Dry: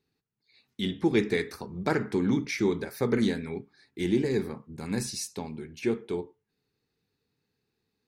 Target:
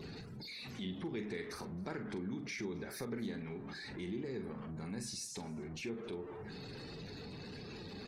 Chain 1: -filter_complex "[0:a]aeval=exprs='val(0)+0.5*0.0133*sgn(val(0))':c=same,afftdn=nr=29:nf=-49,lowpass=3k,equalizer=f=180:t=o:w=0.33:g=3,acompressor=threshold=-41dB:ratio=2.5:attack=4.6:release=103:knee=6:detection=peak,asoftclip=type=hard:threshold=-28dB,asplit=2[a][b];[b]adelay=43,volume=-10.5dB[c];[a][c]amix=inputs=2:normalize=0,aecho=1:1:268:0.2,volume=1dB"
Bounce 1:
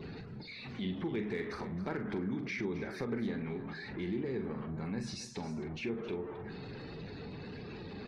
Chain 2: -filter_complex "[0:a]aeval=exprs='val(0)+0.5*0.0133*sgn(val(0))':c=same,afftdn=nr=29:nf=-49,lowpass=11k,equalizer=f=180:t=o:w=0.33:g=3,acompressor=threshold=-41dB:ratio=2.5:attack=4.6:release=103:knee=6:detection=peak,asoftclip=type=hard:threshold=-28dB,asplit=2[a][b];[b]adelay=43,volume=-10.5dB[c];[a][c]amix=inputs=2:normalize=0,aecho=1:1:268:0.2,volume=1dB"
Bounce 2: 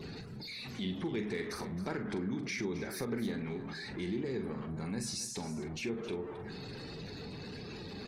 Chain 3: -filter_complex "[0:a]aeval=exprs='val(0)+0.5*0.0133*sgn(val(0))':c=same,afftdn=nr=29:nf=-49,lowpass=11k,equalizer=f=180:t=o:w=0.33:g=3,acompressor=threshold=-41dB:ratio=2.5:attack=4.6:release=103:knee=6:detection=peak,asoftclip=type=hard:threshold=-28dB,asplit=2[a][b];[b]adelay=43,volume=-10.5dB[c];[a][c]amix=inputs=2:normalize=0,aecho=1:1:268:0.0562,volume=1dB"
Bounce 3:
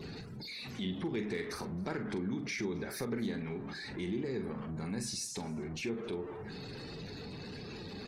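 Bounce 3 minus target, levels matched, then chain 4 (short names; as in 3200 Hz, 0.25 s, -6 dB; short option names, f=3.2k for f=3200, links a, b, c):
compressor: peak gain reduction -5 dB
-filter_complex "[0:a]aeval=exprs='val(0)+0.5*0.0133*sgn(val(0))':c=same,afftdn=nr=29:nf=-49,lowpass=11k,equalizer=f=180:t=o:w=0.33:g=3,acompressor=threshold=-49dB:ratio=2.5:attack=4.6:release=103:knee=6:detection=peak,asoftclip=type=hard:threshold=-28dB,asplit=2[a][b];[b]adelay=43,volume=-10.5dB[c];[a][c]amix=inputs=2:normalize=0,aecho=1:1:268:0.0562,volume=1dB"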